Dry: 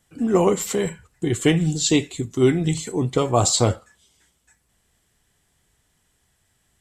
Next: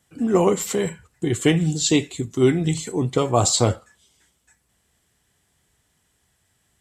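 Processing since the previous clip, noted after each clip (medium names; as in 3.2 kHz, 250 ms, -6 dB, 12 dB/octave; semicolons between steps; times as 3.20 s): high-pass 51 Hz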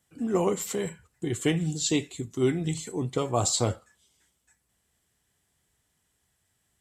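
treble shelf 9.6 kHz +4.5 dB; trim -7.5 dB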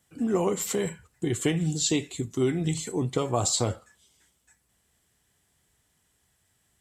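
compression 2.5:1, threshold -26 dBFS, peak gain reduction 5.5 dB; trim +3.5 dB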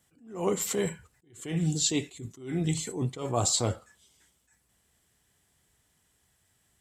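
attacks held to a fixed rise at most 120 dB/s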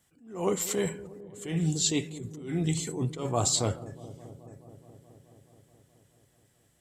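feedback echo behind a low-pass 213 ms, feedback 78%, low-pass 620 Hz, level -15 dB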